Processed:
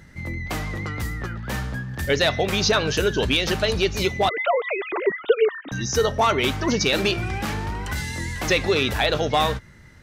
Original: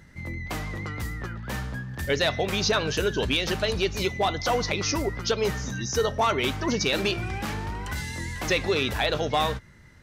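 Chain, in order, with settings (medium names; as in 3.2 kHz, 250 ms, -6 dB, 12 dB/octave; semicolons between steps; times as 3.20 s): 4.29–5.72 s: formants replaced by sine waves; band-stop 1 kHz, Q 29; trim +4 dB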